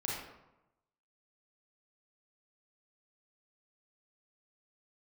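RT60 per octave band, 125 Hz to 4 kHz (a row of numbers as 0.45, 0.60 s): 1.1, 0.95, 0.95, 0.95, 0.70, 0.55 s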